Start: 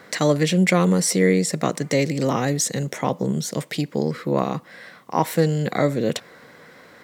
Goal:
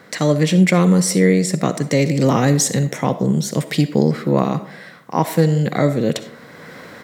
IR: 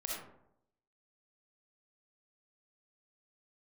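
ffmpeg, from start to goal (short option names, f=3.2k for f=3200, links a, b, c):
-filter_complex "[0:a]equalizer=f=150:t=o:w=2.2:g=5.5,dynaudnorm=f=250:g=3:m=9.5dB,asplit=2[a][b];[1:a]atrim=start_sample=2205,lowshelf=f=340:g=-8.5[c];[b][c]afir=irnorm=-1:irlink=0,volume=-9.5dB[d];[a][d]amix=inputs=2:normalize=0,volume=-2dB"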